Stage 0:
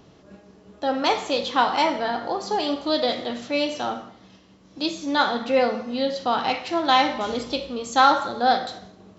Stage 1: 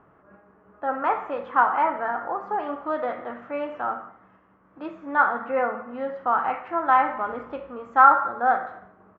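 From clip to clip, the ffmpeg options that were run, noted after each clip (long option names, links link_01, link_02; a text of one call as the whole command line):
ffmpeg -i in.wav -af "firequalizer=gain_entry='entry(240,0);entry(1300,15);entry(4100,-30)':delay=0.05:min_phase=1,volume=-9dB" out.wav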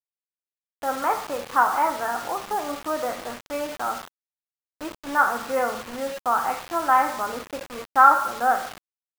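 ffmpeg -i in.wav -af "acrusher=bits=5:mix=0:aa=0.000001" out.wav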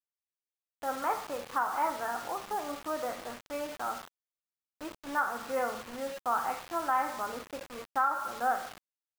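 ffmpeg -i in.wav -af "alimiter=limit=-10.5dB:level=0:latency=1:release=263,volume=-7.5dB" out.wav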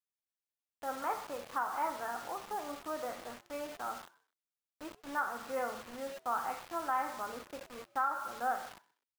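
ffmpeg -i in.wav -filter_complex "[0:a]asplit=3[link_01][link_02][link_03];[link_02]adelay=126,afreqshift=110,volume=-23dB[link_04];[link_03]adelay=252,afreqshift=220,volume=-32.4dB[link_05];[link_01][link_04][link_05]amix=inputs=3:normalize=0,volume=-4.5dB" out.wav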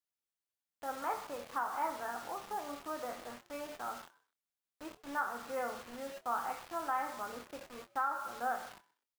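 ffmpeg -i in.wav -filter_complex "[0:a]asplit=2[link_01][link_02];[link_02]adelay=25,volume=-11dB[link_03];[link_01][link_03]amix=inputs=2:normalize=0,volume=-1.5dB" out.wav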